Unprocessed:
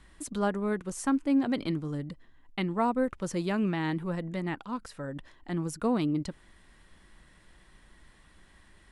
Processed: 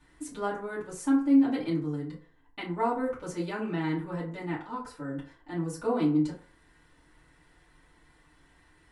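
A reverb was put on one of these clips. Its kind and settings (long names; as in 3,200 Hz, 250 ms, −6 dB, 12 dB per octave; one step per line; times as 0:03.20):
feedback delay network reverb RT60 0.46 s, low-frequency decay 0.7×, high-frequency decay 0.5×, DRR −9 dB
level −10.5 dB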